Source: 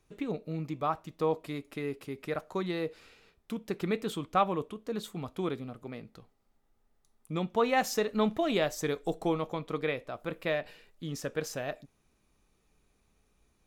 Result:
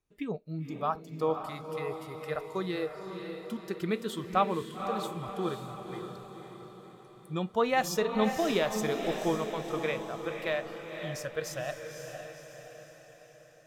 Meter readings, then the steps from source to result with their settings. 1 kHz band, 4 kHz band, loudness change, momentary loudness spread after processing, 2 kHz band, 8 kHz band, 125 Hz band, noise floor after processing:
+1.0 dB, +1.0 dB, 0.0 dB, 18 LU, +1.0 dB, +1.0 dB, -0.5 dB, -55 dBFS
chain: spectral noise reduction 14 dB; on a send: echo that smears into a reverb 530 ms, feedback 52%, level -6.5 dB

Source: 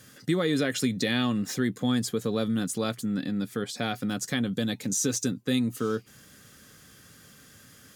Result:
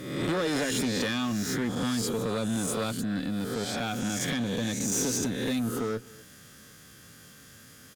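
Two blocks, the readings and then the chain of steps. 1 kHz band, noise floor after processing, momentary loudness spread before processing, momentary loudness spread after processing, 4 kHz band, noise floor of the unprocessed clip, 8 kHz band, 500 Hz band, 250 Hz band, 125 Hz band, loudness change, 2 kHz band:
+1.0 dB, -52 dBFS, 5 LU, 4 LU, -0.5 dB, -54 dBFS, +1.0 dB, -1.0 dB, -2.0 dB, -1.5 dB, -1.0 dB, 0.0 dB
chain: reverse spectral sustain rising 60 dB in 0.93 s; valve stage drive 23 dB, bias 0.35; delay 250 ms -22 dB

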